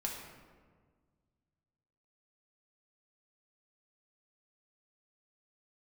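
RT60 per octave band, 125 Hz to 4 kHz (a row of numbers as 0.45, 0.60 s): 2.7, 2.2, 1.7, 1.5, 1.2, 0.85 s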